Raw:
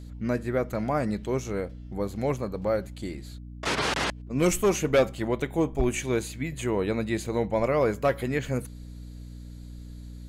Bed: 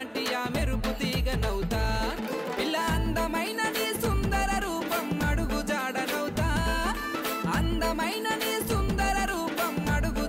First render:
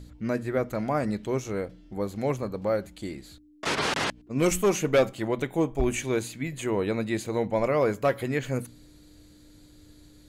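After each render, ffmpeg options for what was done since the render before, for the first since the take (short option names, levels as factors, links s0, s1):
-af "bandreject=f=60:t=h:w=4,bandreject=f=120:t=h:w=4,bandreject=f=180:t=h:w=4,bandreject=f=240:t=h:w=4"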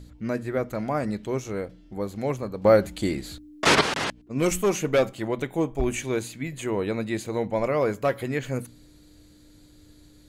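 -filter_complex "[0:a]asplit=3[s0][s1][s2];[s0]atrim=end=2.652[s3];[s1]atrim=start=2.648:end=3.812,asetpts=PTS-STARTPTS,volume=2.99[s4];[s2]atrim=start=3.808[s5];[s3][s4]acrossfade=d=0.004:c1=hsin:c2=hsin[s6];[s6][s5]acrossfade=d=0.004:c1=hsin:c2=hsin"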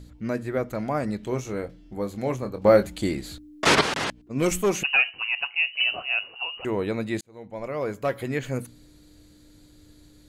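-filter_complex "[0:a]asettb=1/sr,asplit=3[s0][s1][s2];[s0]atrim=end=1.204[s3];[s1]atrim=start=1.2:end=2.83,asetpts=PTS-STARTPTS,afade=t=in:d=0.004:c=qsin,afade=t=out:st=1.626:d=0.004:c=qsin,asplit=2[s4][s5];[s5]adelay=24,volume=0.335[s6];[s4][s6]amix=inputs=2:normalize=0,atrim=end_sample=71883[s7];[s2]atrim=start=2.826[s8];[s3][s7]acrossfade=d=0.004:c1=hsin:c2=qsin[s9];[s9][s8]acrossfade=d=0.004:c1=qsin:c2=hsin,asettb=1/sr,asplit=3[s10][s11][s12];[s10]atrim=end=4.834[s13];[s11]atrim=start=4.83:end=6.65,asetpts=PTS-STARTPTS,afade=t=in:d=0.004:c=qsin,afade=t=out:st=1.816:d=0.004:c=qsin,lowpass=f=2600:t=q:w=0.5098,lowpass=f=2600:t=q:w=0.6013,lowpass=f=2600:t=q:w=0.9,lowpass=f=2600:t=q:w=2.563,afreqshift=-3000[s14];[s12]atrim=start=6.646[s15];[s13][s14]acrossfade=d=0.004:c1=hsin:c2=qsin[s16];[s16][s15]acrossfade=d=0.004:c1=qsin:c2=hsin,asplit=2[s17][s18];[s17]atrim=end=7.21,asetpts=PTS-STARTPTS,afade=t=out:st=7.206:d=0.004:c=hsin[s19];[s18]atrim=start=7.21,asetpts=PTS-STARTPTS,afade=t=in:d=1.11[s20];[s19][s20]concat=n=2:v=0:a=1"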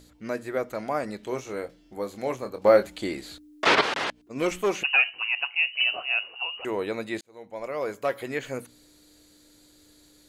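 -filter_complex "[0:a]acrossover=split=4200[s0][s1];[s1]acompressor=threshold=0.00282:ratio=4:attack=1:release=60[s2];[s0][s2]amix=inputs=2:normalize=0,bass=f=250:g=-13,treble=f=4000:g=4"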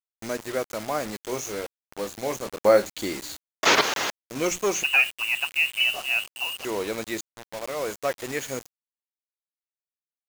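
-af "lowpass=f=6600:t=q:w=5.1,acrusher=bits=5:mix=0:aa=0.000001"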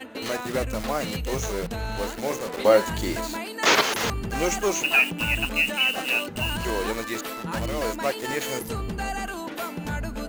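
-filter_complex "[1:a]volume=0.668[s0];[0:a][s0]amix=inputs=2:normalize=0"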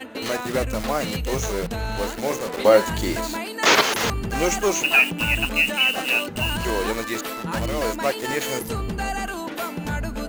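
-af "volume=1.41,alimiter=limit=0.708:level=0:latency=1"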